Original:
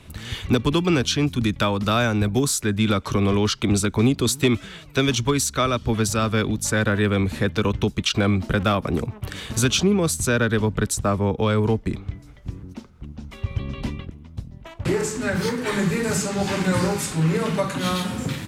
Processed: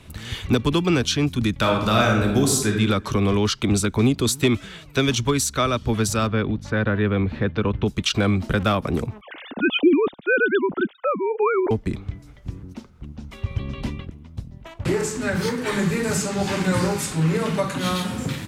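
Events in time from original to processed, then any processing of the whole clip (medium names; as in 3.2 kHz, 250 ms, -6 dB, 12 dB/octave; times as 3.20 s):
1.56–2.71 s: reverb throw, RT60 0.86 s, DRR 1 dB
6.27–7.86 s: distance through air 300 m
9.21–11.71 s: formants replaced by sine waves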